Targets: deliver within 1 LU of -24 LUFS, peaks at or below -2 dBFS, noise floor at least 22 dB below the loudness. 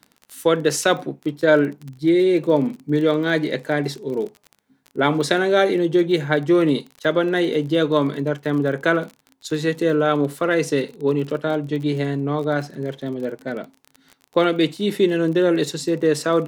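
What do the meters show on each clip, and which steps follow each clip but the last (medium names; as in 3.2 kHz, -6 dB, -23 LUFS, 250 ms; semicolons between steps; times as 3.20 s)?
tick rate 34 per s; loudness -20.5 LUFS; peak level -1.5 dBFS; loudness target -24.0 LUFS
-> de-click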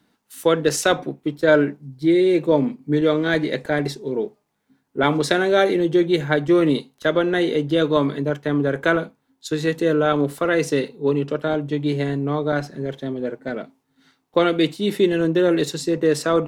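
tick rate 1.1 per s; loudness -20.5 LUFS; peak level -1.5 dBFS; loudness target -24.0 LUFS
-> trim -3.5 dB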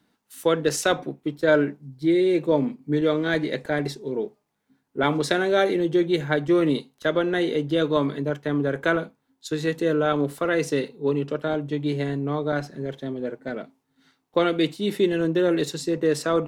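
loudness -24.0 LUFS; peak level -5.0 dBFS; noise floor -74 dBFS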